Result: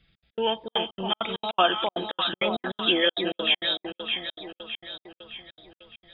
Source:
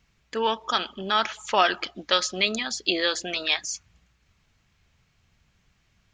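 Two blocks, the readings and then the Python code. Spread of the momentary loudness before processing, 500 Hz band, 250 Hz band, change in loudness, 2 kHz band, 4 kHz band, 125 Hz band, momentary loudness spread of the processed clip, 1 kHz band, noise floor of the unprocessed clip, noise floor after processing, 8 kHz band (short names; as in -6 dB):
7 LU, +1.5 dB, +2.5 dB, -1.0 dB, -2.0 dB, +1.5 dB, +2.5 dB, 18 LU, -2.0 dB, -68 dBFS, under -85 dBFS, under -40 dB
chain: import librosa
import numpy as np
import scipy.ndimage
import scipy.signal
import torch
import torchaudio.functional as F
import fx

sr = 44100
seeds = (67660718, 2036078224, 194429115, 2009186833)

y = fx.freq_compress(x, sr, knee_hz=3100.0, ratio=4.0)
y = y + 0.31 * np.pad(y, (int(6.0 * sr / 1000.0), 0))[:len(y)]
y = fx.filter_lfo_notch(y, sr, shape='saw_up', hz=0.36, low_hz=940.0, high_hz=3400.0, q=1.6)
y = fx.echo_alternate(y, sr, ms=306, hz=930.0, feedback_pct=70, wet_db=-3.5)
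y = fx.step_gate(y, sr, bpm=199, pattern='xx.x.xxxx.xx.xx.', floor_db=-60.0, edge_ms=4.5)
y = F.gain(torch.from_numpy(y), 1.0).numpy()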